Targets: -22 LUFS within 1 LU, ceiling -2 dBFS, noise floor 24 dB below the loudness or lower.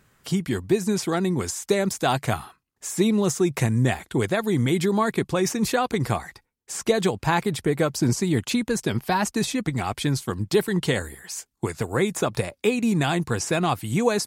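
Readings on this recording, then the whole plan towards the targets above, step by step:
loudness -24.0 LUFS; peak -8.0 dBFS; loudness target -22.0 LUFS
-> gain +2 dB

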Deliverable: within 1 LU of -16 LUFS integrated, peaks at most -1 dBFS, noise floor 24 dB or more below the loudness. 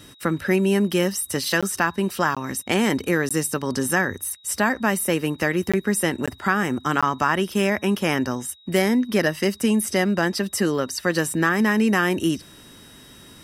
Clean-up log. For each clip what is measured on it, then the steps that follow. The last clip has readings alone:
dropouts 6; longest dropout 16 ms; steady tone 3800 Hz; tone level -50 dBFS; loudness -22.0 LUFS; peak -5.5 dBFS; loudness target -16.0 LUFS
-> interpolate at 1.61/2.35/3.29/5.72/6.26/7.01, 16 ms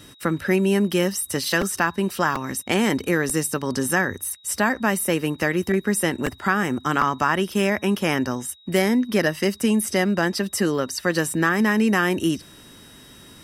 dropouts 0; steady tone 3800 Hz; tone level -50 dBFS
-> notch 3800 Hz, Q 30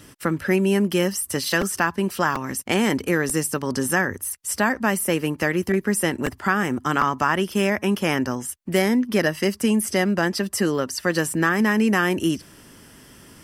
steady tone none; loudness -22.0 LUFS; peak -5.5 dBFS; loudness target -16.0 LUFS
-> gain +6 dB; limiter -1 dBFS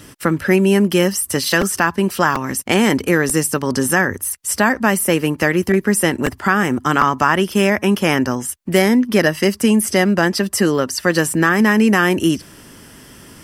loudness -16.5 LUFS; peak -1.0 dBFS; noise floor -42 dBFS

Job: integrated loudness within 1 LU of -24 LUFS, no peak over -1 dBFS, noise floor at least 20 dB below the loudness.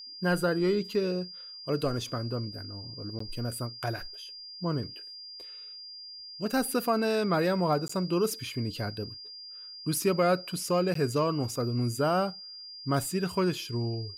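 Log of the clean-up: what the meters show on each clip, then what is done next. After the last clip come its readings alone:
dropouts 3; longest dropout 14 ms; steady tone 4800 Hz; tone level -42 dBFS; loudness -30.0 LUFS; peak -14.5 dBFS; loudness target -24.0 LUFS
-> interpolate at 3.19/7.88/10.94, 14 ms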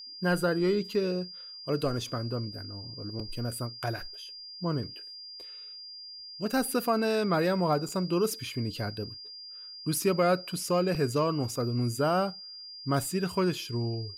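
dropouts 0; steady tone 4800 Hz; tone level -42 dBFS
-> notch 4800 Hz, Q 30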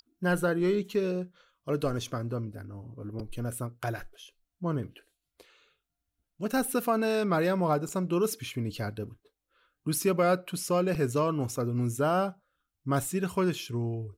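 steady tone none; loudness -30.0 LUFS; peak -15.0 dBFS; loudness target -24.0 LUFS
-> gain +6 dB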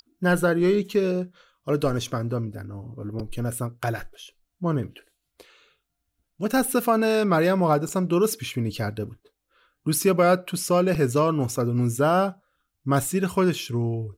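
loudness -24.0 LUFS; peak -9.0 dBFS; noise floor -79 dBFS

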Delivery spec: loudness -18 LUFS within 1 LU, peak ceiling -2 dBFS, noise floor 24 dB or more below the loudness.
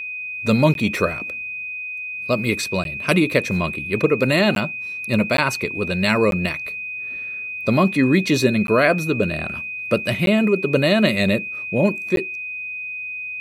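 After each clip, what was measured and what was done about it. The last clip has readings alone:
dropouts 8; longest dropout 12 ms; steady tone 2500 Hz; tone level -27 dBFS; loudness -20.5 LUFS; peak -1.5 dBFS; loudness target -18.0 LUFS
-> interpolate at 0.74/2.84/4.55/5.37/6.31/8.67/10.26/12.16, 12 ms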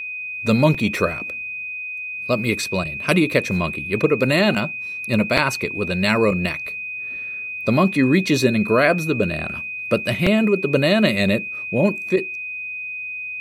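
dropouts 0; steady tone 2500 Hz; tone level -27 dBFS
-> notch 2500 Hz, Q 30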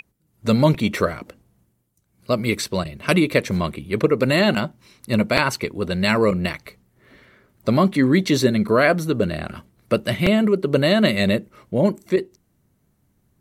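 steady tone none; loudness -20.0 LUFS; peak -2.0 dBFS; loudness target -18.0 LUFS
-> gain +2 dB; limiter -2 dBFS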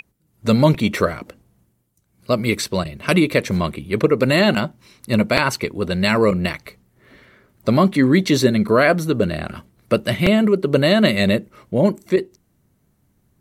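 loudness -18.5 LUFS; peak -2.0 dBFS; noise floor -64 dBFS

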